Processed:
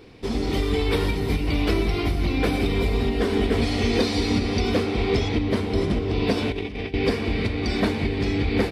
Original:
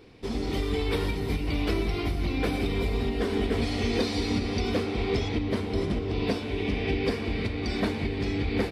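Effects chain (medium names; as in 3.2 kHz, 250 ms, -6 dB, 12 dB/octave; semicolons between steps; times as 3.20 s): 6.37–6.94 s: compressor with a negative ratio -32 dBFS, ratio -0.5; trim +5 dB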